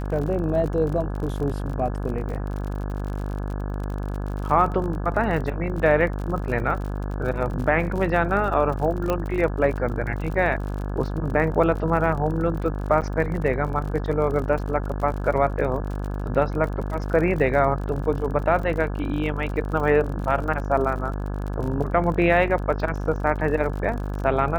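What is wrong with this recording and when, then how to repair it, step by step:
buzz 50 Hz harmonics 34 -28 dBFS
crackle 46 per s -31 dBFS
9.10 s: pop -11 dBFS
13.01–13.02 s: dropout 8.4 ms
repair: de-click; de-hum 50 Hz, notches 34; interpolate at 13.01 s, 8.4 ms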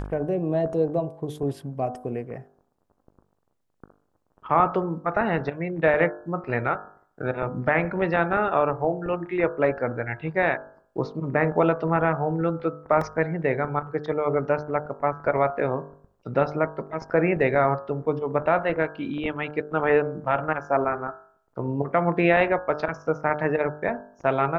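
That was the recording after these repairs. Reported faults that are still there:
nothing left

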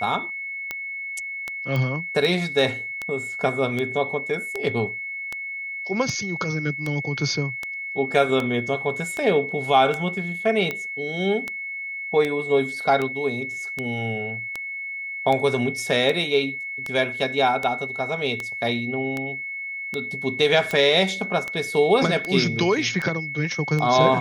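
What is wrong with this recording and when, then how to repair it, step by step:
tick 78 rpm -13 dBFS
whine 2.2 kHz -29 dBFS
1.76 s: pop -15 dBFS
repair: de-click; band-stop 2.2 kHz, Q 30

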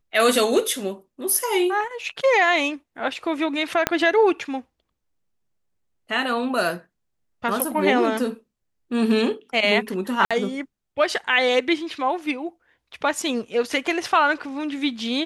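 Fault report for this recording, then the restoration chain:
3.87 s: pop -3 dBFS
10.25–10.31 s: dropout 56 ms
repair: de-click; interpolate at 10.25 s, 56 ms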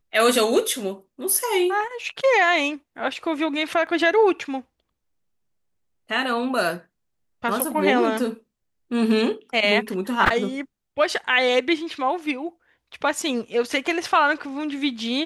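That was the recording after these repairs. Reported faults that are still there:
3.87 s: pop

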